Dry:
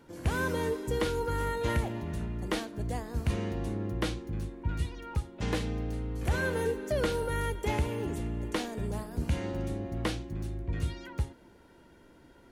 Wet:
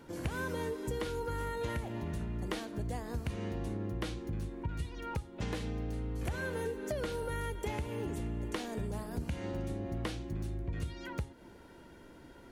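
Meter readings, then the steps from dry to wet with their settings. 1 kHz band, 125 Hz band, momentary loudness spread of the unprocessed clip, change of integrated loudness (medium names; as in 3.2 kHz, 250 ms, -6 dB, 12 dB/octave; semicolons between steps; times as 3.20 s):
-5.5 dB, -5.0 dB, 6 LU, -5.0 dB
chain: compression 5:1, threshold -37 dBFS, peak gain reduction 13 dB; trim +3 dB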